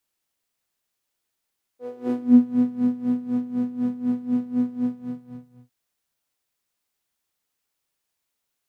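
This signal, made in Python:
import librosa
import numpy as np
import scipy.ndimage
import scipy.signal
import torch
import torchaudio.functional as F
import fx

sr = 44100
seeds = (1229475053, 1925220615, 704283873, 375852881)

y = fx.sub_patch_tremolo(sr, seeds[0], note=59, wave='saw', wave2='saw', interval_st=0, detune_cents=25, level2_db=-15, sub_db=-19, noise_db=-6.0, kind='bandpass', cutoff_hz=130.0, q=5.6, env_oct=2.0, env_decay_s=0.67, env_sustain_pct=35, attack_ms=367.0, decay_s=1.18, sustain_db=-3.5, release_s=0.93, note_s=2.98, lfo_hz=4.0, tremolo_db=17.0)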